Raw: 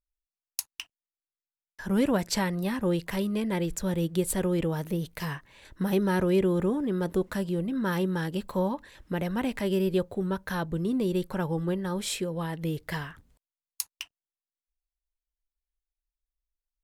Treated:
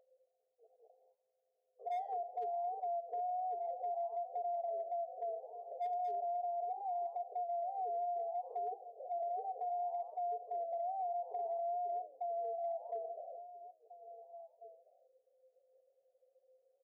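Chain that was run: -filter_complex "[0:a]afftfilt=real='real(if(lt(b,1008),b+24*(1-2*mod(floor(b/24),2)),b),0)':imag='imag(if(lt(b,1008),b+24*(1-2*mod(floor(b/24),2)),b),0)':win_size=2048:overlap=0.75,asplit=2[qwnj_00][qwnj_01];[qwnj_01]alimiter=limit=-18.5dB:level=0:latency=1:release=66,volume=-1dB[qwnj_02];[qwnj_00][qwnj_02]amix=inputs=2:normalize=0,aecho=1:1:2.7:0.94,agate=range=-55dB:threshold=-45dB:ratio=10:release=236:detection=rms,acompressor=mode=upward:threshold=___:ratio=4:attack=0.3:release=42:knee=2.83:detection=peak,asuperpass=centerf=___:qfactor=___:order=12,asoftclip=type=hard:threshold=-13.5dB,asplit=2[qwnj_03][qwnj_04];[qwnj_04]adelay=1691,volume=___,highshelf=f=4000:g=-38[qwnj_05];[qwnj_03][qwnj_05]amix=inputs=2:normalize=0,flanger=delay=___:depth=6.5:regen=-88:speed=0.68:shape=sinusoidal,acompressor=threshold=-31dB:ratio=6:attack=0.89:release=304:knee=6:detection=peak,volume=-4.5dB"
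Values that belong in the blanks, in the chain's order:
-26dB, 560, 1.8, -19dB, 4.4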